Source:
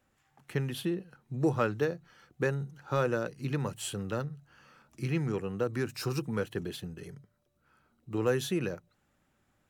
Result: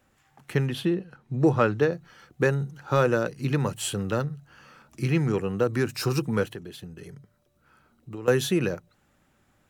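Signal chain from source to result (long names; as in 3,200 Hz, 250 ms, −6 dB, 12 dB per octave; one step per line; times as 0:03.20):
0:00.66–0:01.93: high-shelf EQ 7,600 Hz −12 dB
0:06.48–0:08.28: downward compressor 2.5 to 1, threshold −48 dBFS, peak gain reduction 15 dB
level +7 dB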